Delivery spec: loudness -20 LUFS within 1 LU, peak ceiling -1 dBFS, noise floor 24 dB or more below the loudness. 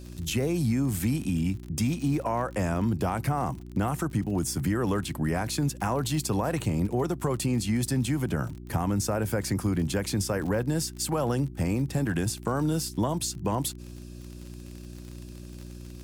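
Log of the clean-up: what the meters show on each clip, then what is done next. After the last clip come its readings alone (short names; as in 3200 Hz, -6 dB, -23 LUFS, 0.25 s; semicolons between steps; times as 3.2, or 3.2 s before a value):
ticks 42/s; hum 60 Hz; harmonics up to 360 Hz; hum level -41 dBFS; loudness -28.5 LUFS; peak -16.0 dBFS; loudness target -20.0 LUFS
-> de-click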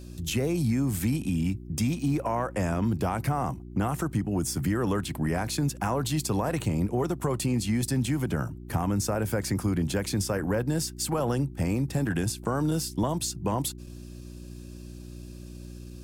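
ticks 0.31/s; hum 60 Hz; harmonics up to 360 Hz; hum level -41 dBFS
-> de-hum 60 Hz, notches 6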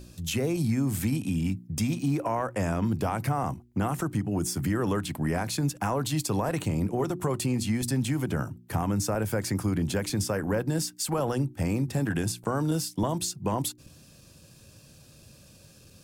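hum none; loudness -29.0 LUFS; peak -16.0 dBFS; loudness target -20.0 LUFS
-> gain +9 dB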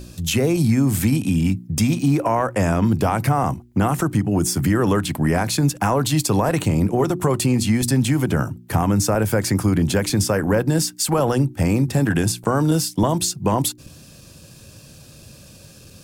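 loudness -20.0 LUFS; peak -7.0 dBFS; noise floor -45 dBFS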